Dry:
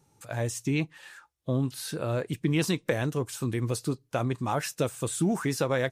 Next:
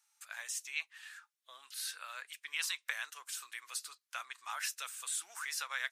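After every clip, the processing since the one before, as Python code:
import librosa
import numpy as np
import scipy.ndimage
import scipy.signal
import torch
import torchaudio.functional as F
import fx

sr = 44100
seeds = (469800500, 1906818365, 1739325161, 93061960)

y = scipy.signal.sosfilt(scipy.signal.butter(4, 1300.0, 'highpass', fs=sr, output='sos'), x)
y = y * 10.0 ** (-2.5 / 20.0)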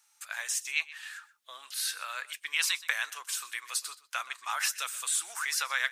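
y = x + 10.0 ** (-18.5 / 20.0) * np.pad(x, (int(125 * sr / 1000.0), 0))[:len(x)]
y = y * 10.0 ** (8.0 / 20.0)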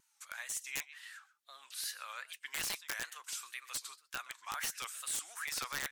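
y = (np.mod(10.0 ** (20.5 / 20.0) * x + 1.0, 2.0) - 1.0) / 10.0 ** (20.5 / 20.0)
y = fx.wow_flutter(y, sr, seeds[0], rate_hz=2.1, depth_cents=140.0)
y = y * 10.0 ** (-7.5 / 20.0)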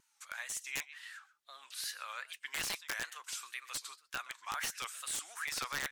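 y = fx.high_shelf(x, sr, hz=8000.0, db=-6.0)
y = y * 10.0 ** (2.0 / 20.0)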